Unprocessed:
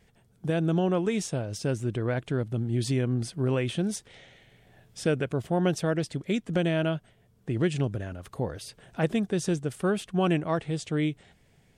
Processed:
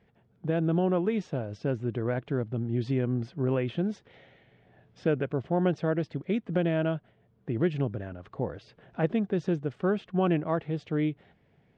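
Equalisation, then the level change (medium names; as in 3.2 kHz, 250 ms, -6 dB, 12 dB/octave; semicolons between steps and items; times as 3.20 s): high-pass 140 Hz 6 dB/octave; distance through air 130 m; tape spacing loss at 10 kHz 22 dB; +1.5 dB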